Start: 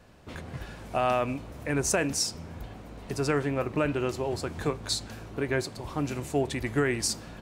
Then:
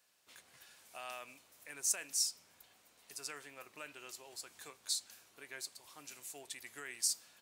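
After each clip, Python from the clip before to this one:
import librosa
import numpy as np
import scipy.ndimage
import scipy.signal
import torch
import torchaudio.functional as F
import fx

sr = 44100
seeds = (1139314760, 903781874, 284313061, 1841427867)

y = np.diff(x, prepend=0.0)
y = y * 10.0 ** (-3.5 / 20.0)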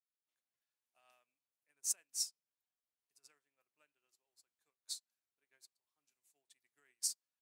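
y = fx.upward_expand(x, sr, threshold_db=-53.0, expansion=2.5)
y = y * 10.0 ** (-1.5 / 20.0)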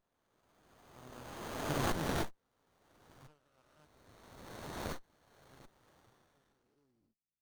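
y = fx.spec_swells(x, sr, rise_s=2.04)
y = fx.filter_sweep_lowpass(y, sr, from_hz=8600.0, to_hz=210.0, start_s=5.86, end_s=7.03, q=0.8)
y = fx.running_max(y, sr, window=17)
y = y * 10.0 ** (4.0 / 20.0)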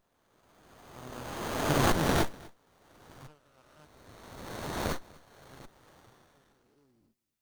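y = x + 10.0 ** (-23.0 / 20.0) * np.pad(x, (int(246 * sr / 1000.0), 0))[:len(x)]
y = y * 10.0 ** (8.5 / 20.0)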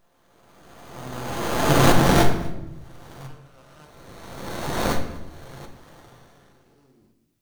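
y = fx.room_shoebox(x, sr, seeds[0], volume_m3=350.0, walls='mixed', distance_m=0.78)
y = y * 10.0 ** (7.5 / 20.0)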